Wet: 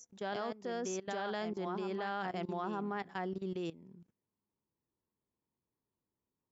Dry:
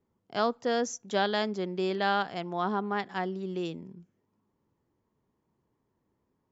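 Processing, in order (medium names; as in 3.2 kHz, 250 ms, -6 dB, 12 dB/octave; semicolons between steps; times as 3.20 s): dynamic bell 3.9 kHz, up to -6 dB, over -49 dBFS, Q 1.7; reverse echo 923 ms -5.5 dB; level held to a coarse grid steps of 18 dB; trim -1.5 dB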